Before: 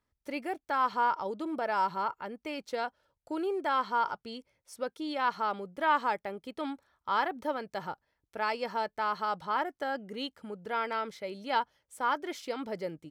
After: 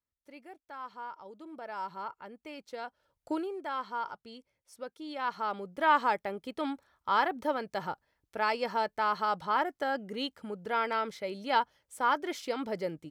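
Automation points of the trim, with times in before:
1.12 s -14.5 dB
2.08 s -7 dB
2.81 s -7 dB
3.32 s +4 dB
3.49 s -6.5 dB
4.99 s -6.5 dB
5.88 s +2 dB

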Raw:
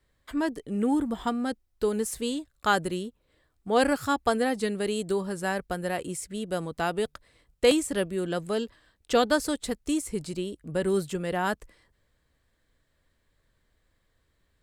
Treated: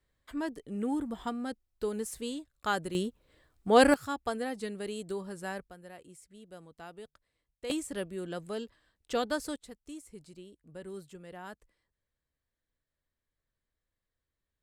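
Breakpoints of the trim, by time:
-7 dB
from 2.95 s +2 dB
from 3.94 s -9 dB
from 5.69 s -19 dB
from 7.70 s -8.5 dB
from 9.56 s -17.5 dB

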